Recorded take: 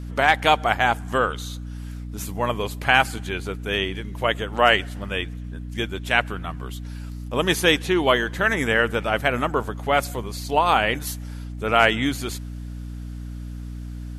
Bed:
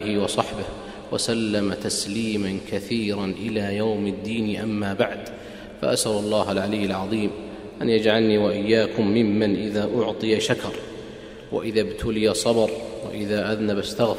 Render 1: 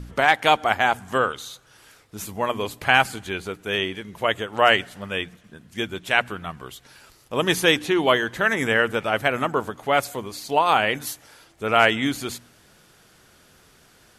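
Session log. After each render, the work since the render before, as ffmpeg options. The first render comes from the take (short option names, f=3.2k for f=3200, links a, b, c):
-af "bandreject=f=60:t=h:w=4,bandreject=f=120:t=h:w=4,bandreject=f=180:t=h:w=4,bandreject=f=240:t=h:w=4,bandreject=f=300:t=h:w=4"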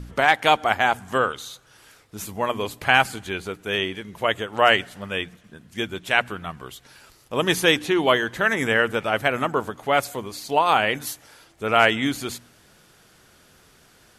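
-af anull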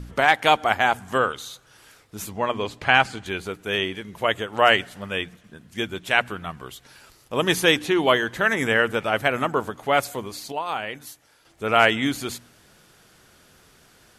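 -filter_complex "[0:a]asettb=1/sr,asplit=3[a][b][c];[a]atrim=end=2.294[d];[b]atrim=start=2.29:end=3.26,asetpts=PTS-STARTPTS,afade=t=in:d=0.004:c=qsin,afade=t=out:st=0.966:d=0.004:c=qsin,lowpass=6k[e];[c]atrim=start=3.256[f];[d][e]acrossfade=d=0.004:c1=hsin:c2=qsin[g];[g][f]acrossfade=d=0.004:c1=qsin:c2=hsin,asplit=3[h][i][j];[h]atrim=end=10.52,asetpts=PTS-STARTPTS,afade=t=out:st=10.19:d=0.33:c=log:silence=0.334965[k];[i]atrim=start=10.52:end=11.45,asetpts=PTS-STARTPTS,volume=-9.5dB[l];[j]atrim=start=11.45,asetpts=PTS-STARTPTS,afade=t=in:d=0.33:c=log:silence=0.334965[m];[k][l][m]concat=n=3:v=0:a=1"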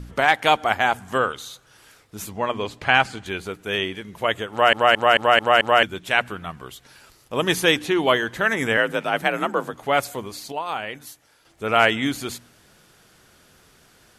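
-filter_complex "[0:a]asettb=1/sr,asplit=3[a][b][c];[a]atrim=end=8.774[d];[b]atrim=start=8.77:end=9.73,asetpts=PTS-STARTPTS,afade=t=in:d=0.004:c=qsin,afade=t=out:st=0.956:d=0.004:c=qsin,afreqshift=47[e];[c]atrim=start=9.726[f];[d][e]acrossfade=d=0.004:c1=hsin:c2=qsin[g];[g][f]acrossfade=d=0.004:c1=qsin:c2=hsin,asplit=7[h][i][j][k][l][m][n];[h]atrim=end=4.732[o];[i]atrim=start=4.508:end=4.732[p];[j]atrim=start=4.508:end=4.732[q];[k]atrim=start=4.508:end=4.732[r];[l]atrim=start=4.508:end=4.732[s];[m]atrim=start=4.508:end=4.732[t];[n]atrim=start=5.828[u];[o][p]acrossfade=d=0.004:c1=hsin:c2=hsin[v];[v][q]acrossfade=d=0.004:c1=hsin:c2=hsin[w];[w][r]acrossfade=d=0.004:c1=hsin:c2=hsin[x];[x][s]acrossfade=d=0.004:c1=hsin:c2=hsin[y];[y][t]acrossfade=d=0.004:c1=hsin:c2=hsin[z];[z][u]acrossfade=d=0.004:c1=hsin:c2=hsin"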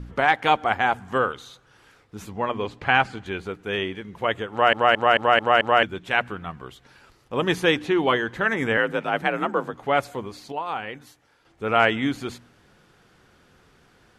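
-af "aemphasis=mode=reproduction:type=75kf,bandreject=f=630:w=12"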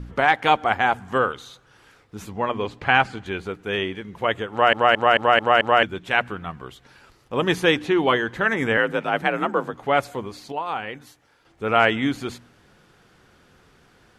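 -af "volume=1.5dB,alimiter=limit=-3dB:level=0:latency=1"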